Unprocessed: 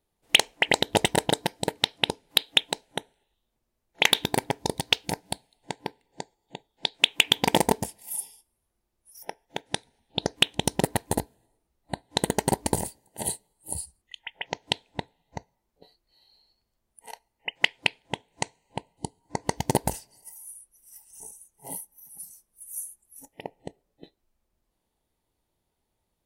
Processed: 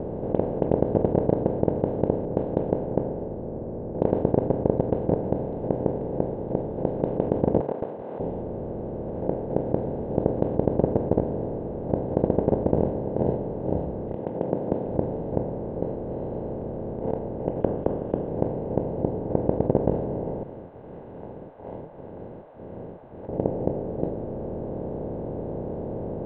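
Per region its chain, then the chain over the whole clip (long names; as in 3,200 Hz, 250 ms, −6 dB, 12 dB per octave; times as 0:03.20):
0:02.25–0:05.24: low-pass that shuts in the quiet parts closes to 440 Hz, open at −20.5 dBFS + leveller curve on the samples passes 1
0:07.60–0:08.20: one scale factor per block 3 bits + high-pass filter 1,100 Hz 24 dB per octave + downward expander −53 dBFS
0:14.15–0:14.86: phase distortion by the signal itself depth 0.47 ms + high-pass filter 190 Hz 24 dB per octave + hard clipping −8 dBFS
0:17.60–0:18.28: high-pass filter 110 Hz + voice inversion scrambler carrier 3,600 Hz
0:20.43–0:23.29: Butterworth high-pass 1,400 Hz + flanger 2 Hz, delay 4.9 ms, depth 6.8 ms, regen +50%
whole clip: compressor on every frequency bin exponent 0.2; Chebyshev low-pass filter 550 Hz, order 3; hum removal 144.9 Hz, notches 33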